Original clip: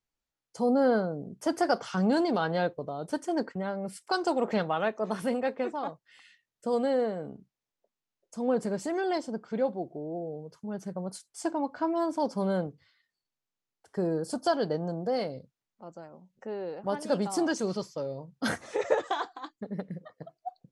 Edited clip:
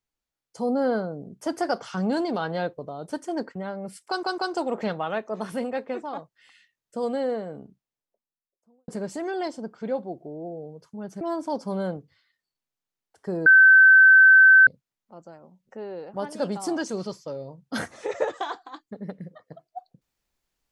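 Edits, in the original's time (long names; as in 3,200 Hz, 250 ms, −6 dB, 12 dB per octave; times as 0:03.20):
0:04.08: stutter 0.15 s, 3 plays
0:07.25–0:08.58: fade out and dull
0:10.91–0:11.91: remove
0:14.16–0:15.37: beep over 1,540 Hz −9.5 dBFS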